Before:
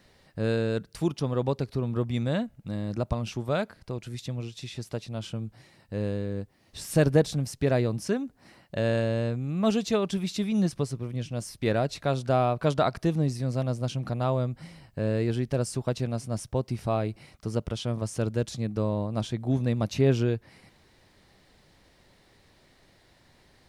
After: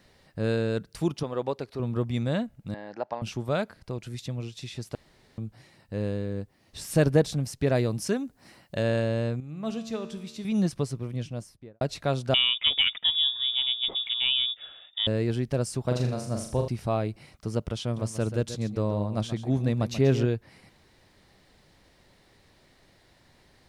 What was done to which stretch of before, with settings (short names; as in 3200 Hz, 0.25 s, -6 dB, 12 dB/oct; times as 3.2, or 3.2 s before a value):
1.23–1.8 tone controls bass -12 dB, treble -4 dB
2.74–3.22 speaker cabinet 470–4800 Hz, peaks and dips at 830 Hz +9 dB, 1200 Hz -6 dB, 1700 Hz +7 dB, 2500 Hz -3 dB, 3700 Hz -9 dB
4.95–5.38 room tone
7.75–8.83 high shelf 4600 Hz +6.5 dB
9.4–10.45 resonator 75 Hz, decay 1.2 s, mix 70%
11.14–11.81 studio fade out
12.34–15.07 inverted band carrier 3600 Hz
15.81–16.68 flutter echo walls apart 6.9 m, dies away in 0.51 s
17.83–20.26 echo 0.134 s -11.5 dB